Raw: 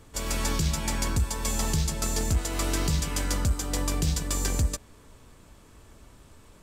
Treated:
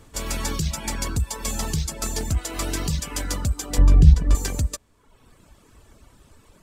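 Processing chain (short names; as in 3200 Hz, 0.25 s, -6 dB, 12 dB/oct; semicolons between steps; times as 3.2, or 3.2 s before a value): reverb removal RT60 1 s; 3.78–4.35 RIAA curve playback; gain +2.5 dB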